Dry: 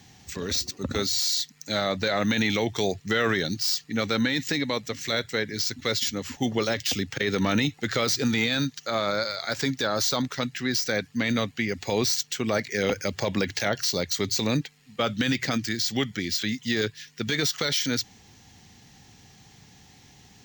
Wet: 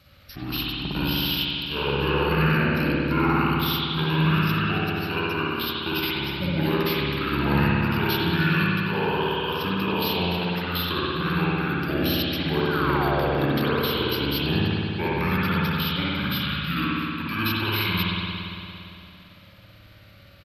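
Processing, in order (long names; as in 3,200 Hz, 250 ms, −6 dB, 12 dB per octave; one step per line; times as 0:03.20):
sound drawn into the spectrogram fall, 0:12.66–0:13.59, 290–2,300 Hz −29 dBFS
pitch shifter −6 semitones
spring reverb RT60 2.8 s, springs 57 ms, chirp 45 ms, DRR −7 dB
level −4.5 dB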